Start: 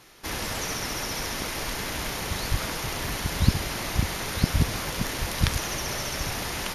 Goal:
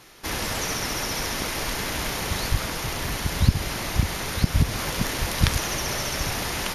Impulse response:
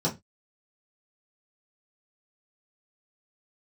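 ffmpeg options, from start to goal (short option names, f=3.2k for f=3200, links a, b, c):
-filter_complex "[0:a]asettb=1/sr,asplit=3[a][b][c];[a]atrim=end=2.474[d];[b]atrim=start=2.47:end=4.79,asetpts=PTS-STARTPTS,afade=t=in:d=0.004:c=qsin,afade=t=out:st=2.316:d=0.004:c=qsin,acrossover=split=180[e][f];[f]acompressor=threshold=-30dB:ratio=3[g];[e][g]amix=inputs=2:normalize=0[h];[c]atrim=start=4.786[i];[d][h]acrossfade=d=0.004:c1=hsin:c2=qsin[j];[j][i]acrossfade=d=0.004:c1=qsin:c2=hsin,volume=3dB"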